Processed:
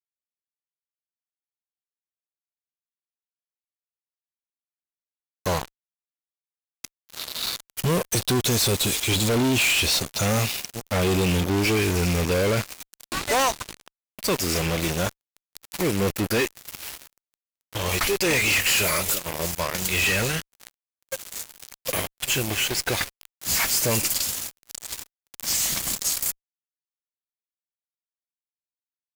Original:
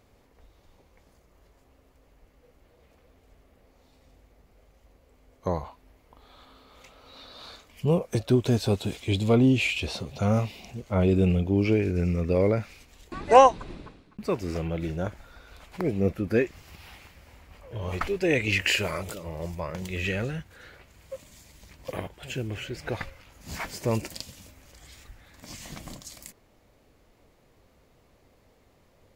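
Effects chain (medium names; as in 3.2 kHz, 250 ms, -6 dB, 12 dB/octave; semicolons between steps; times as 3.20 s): pre-emphasis filter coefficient 0.9; fuzz box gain 55 dB, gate -51 dBFS; trim -6 dB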